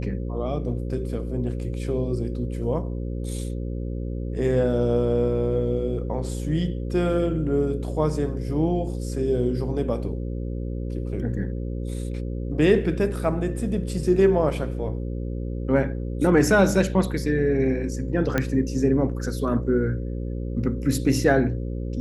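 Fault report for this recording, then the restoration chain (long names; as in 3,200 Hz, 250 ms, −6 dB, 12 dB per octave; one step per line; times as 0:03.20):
mains buzz 60 Hz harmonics 9 −29 dBFS
0:18.38: click −9 dBFS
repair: click removal
hum removal 60 Hz, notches 9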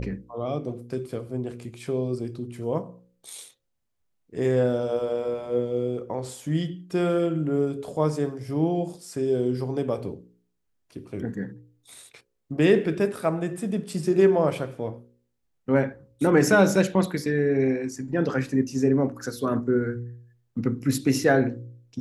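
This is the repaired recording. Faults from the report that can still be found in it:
none of them is left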